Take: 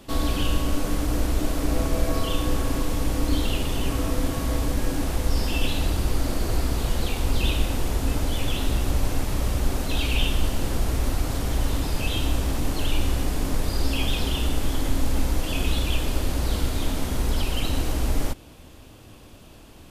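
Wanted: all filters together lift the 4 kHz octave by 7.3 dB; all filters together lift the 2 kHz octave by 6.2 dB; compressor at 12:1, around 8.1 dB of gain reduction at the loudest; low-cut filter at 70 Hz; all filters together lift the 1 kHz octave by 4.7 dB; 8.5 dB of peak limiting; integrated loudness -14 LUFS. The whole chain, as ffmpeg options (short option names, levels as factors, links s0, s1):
-af "highpass=70,equalizer=f=1000:t=o:g=4.5,equalizer=f=2000:t=o:g=4.5,equalizer=f=4000:t=o:g=7.5,acompressor=threshold=0.0447:ratio=12,volume=10,alimiter=limit=0.531:level=0:latency=1"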